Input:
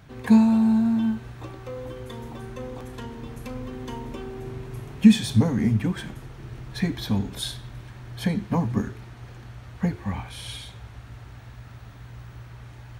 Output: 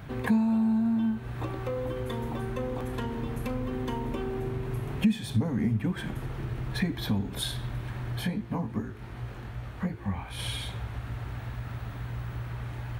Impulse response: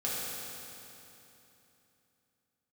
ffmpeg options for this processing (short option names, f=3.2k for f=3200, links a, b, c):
-filter_complex "[0:a]equalizer=f=6k:w=0.93:g=-8,acompressor=threshold=-37dB:ratio=2.5,asplit=3[a][b][c];[a]afade=t=out:st=8.2:d=0.02[d];[b]flanger=delay=17.5:depth=5:speed=2.6,afade=t=in:st=8.2:d=0.02,afade=t=out:st=10.38:d=0.02[e];[c]afade=t=in:st=10.38:d=0.02[f];[d][e][f]amix=inputs=3:normalize=0,volume=7dB"